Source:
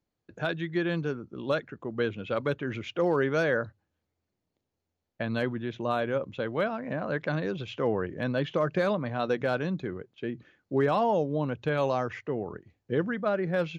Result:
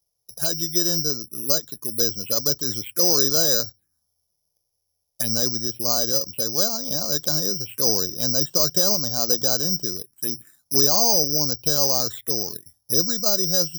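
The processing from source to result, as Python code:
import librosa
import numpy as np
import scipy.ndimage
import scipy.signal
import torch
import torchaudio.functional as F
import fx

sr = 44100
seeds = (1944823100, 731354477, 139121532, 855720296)

y = (np.kron(scipy.signal.resample_poly(x, 1, 8), np.eye(8)[0]) * 8)[:len(x)]
y = fx.env_phaser(y, sr, low_hz=270.0, high_hz=2300.0, full_db=-19.0)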